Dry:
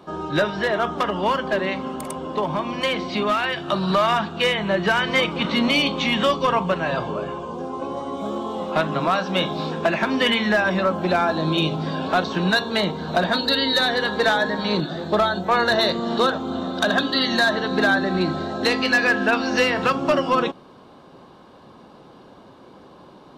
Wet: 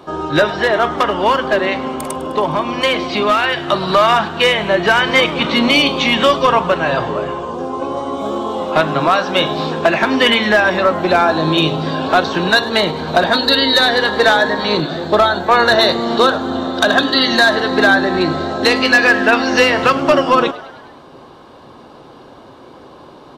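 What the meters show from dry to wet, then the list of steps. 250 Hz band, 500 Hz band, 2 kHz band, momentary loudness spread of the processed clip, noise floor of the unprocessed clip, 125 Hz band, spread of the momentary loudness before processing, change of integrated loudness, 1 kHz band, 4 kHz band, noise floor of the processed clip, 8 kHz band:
+5.0 dB, +7.5 dB, +7.5 dB, 9 LU, -47 dBFS, +3.5 dB, 8 LU, +7.0 dB, +7.5 dB, +7.5 dB, -40 dBFS, +7.5 dB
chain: peaking EQ 190 Hz -10 dB 0.31 oct; frequency-shifting echo 103 ms, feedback 60%, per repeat +97 Hz, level -18.5 dB; trim +7.5 dB

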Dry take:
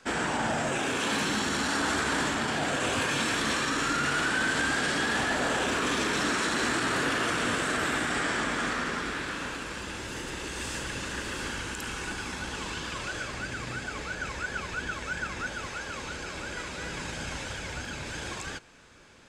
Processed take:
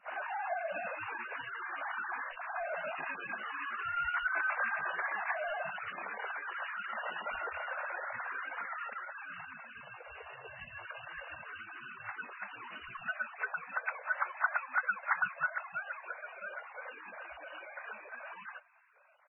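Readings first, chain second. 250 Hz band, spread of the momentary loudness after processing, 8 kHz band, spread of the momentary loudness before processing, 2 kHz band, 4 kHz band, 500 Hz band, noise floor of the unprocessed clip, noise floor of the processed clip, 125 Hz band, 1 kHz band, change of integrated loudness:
-28.0 dB, 14 LU, under -40 dB, 9 LU, -6.0 dB, -21.5 dB, -10.5 dB, -39 dBFS, -52 dBFS, -25.5 dB, -6.0 dB, -8.5 dB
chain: formants replaced by sine waves; in parallel at -8 dB: sample-rate reducer 2.8 kHz, jitter 0%; on the sum: speakerphone echo 320 ms, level -29 dB; trim -8.5 dB; MP3 8 kbps 16 kHz

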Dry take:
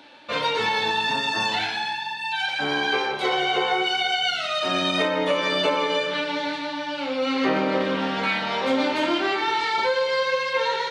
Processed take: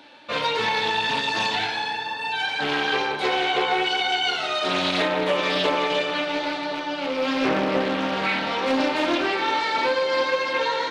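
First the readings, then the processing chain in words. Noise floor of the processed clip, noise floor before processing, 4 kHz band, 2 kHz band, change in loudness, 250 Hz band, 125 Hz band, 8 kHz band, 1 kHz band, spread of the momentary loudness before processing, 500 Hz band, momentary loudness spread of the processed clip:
-30 dBFS, -31 dBFS, 0.0 dB, +0.5 dB, 0.0 dB, 0.0 dB, +0.5 dB, 0.0 dB, +0.5 dB, 5 LU, +0.5 dB, 5 LU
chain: rattle on loud lows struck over -38 dBFS, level -25 dBFS; bucket-brigade echo 354 ms, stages 4096, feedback 83%, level -14 dB; loudspeaker Doppler distortion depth 0.28 ms

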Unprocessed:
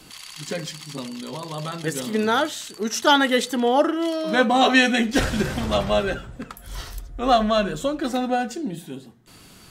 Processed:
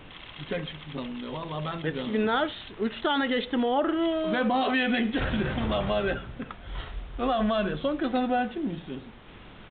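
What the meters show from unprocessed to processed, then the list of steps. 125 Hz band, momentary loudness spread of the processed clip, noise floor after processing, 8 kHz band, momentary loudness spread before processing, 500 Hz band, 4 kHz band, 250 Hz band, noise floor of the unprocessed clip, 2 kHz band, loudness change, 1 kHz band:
-3.0 dB, 14 LU, -47 dBFS, under -40 dB, 19 LU, -5.5 dB, -8.5 dB, -4.0 dB, -48 dBFS, -7.0 dB, -6.5 dB, -7.0 dB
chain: added noise pink -46 dBFS; peak limiter -15 dBFS, peak gain reduction 10 dB; resampled via 8 kHz; trim -2 dB

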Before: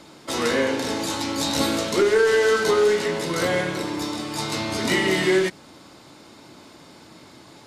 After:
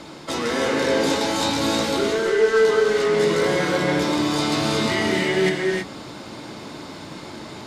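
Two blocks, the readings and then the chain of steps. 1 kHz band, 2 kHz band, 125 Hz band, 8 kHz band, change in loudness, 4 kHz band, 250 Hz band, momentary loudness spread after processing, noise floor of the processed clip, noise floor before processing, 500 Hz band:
+3.0 dB, +1.0 dB, +3.5 dB, -0.5 dB, +1.5 dB, +1.5 dB, +3.0 dB, 18 LU, -38 dBFS, -48 dBFS, +1.5 dB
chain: treble shelf 9 kHz -10.5 dB; reverse; compression, threshold -29 dBFS, peak gain reduction 14 dB; reverse; gated-style reverb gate 350 ms rising, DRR -0.5 dB; trim +7.5 dB

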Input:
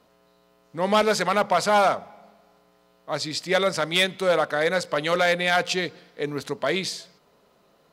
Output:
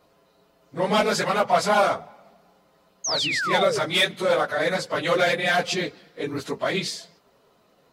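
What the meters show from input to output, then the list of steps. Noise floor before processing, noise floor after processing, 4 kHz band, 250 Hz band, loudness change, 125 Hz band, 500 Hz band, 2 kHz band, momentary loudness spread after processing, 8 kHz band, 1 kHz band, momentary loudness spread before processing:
-62 dBFS, -62 dBFS, +1.5 dB, 0.0 dB, +0.5 dB, +0.5 dB, 0.0 dB, +0.5 dB, 11 LU, +2.0 dB, 0.0 dB, 11 LU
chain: phase randomisation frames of 50 ms; painted sound fall, 3.04–3.79 s, 370–6700 Hz -26 dBFS

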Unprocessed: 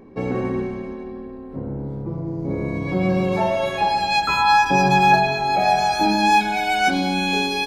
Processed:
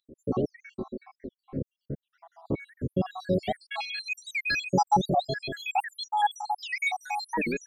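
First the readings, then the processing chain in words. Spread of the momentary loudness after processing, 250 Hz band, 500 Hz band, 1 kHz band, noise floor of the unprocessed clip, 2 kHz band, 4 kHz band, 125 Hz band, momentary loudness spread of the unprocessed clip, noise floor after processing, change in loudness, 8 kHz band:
15 LU, -10.0 dB, -9.0 dB, -11.5 dB, -35 dBFS, -10.0 dB, -11.0 dB, -9.0 dB, 15 LU, under -85 dBFS, -10.5 dB, -9.5 dB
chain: random holes in the spectrogram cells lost 84%; warped record 78 rpm, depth 250 cents; trim -1.5 dB

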